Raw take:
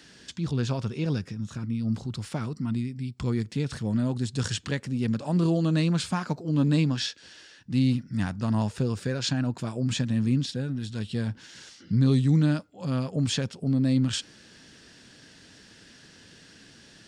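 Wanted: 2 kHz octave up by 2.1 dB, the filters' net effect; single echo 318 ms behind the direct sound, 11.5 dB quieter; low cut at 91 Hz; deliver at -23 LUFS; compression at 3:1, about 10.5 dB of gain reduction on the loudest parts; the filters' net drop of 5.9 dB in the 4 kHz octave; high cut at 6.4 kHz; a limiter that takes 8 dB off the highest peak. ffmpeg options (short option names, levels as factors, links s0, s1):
-af "highpass=91,lowpass=6400,equalizer=f=2000:t=o:g=5,equalizer=f=4000:t=o:g=-8.5,acompressor=threshold=0.0224:ratio=3,alimiter=level_in=1.78:limit=0.0631:level=0:latency=1,volume=0.562,aecho=1:1:318:0.266,volume=5.96"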